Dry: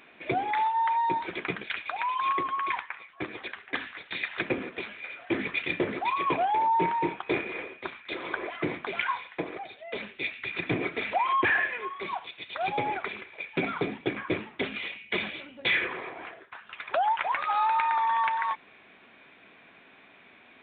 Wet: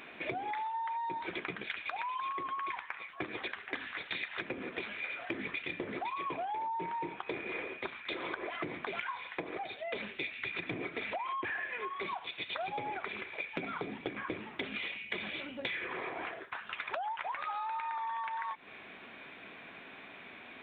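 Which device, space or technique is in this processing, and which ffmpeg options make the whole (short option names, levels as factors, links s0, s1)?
serial compression, leveller first: -af "acompressor=threshold=0.0282:ratio=2.5,acompressor=threshold=0.01:ratio=6,volume=1.68"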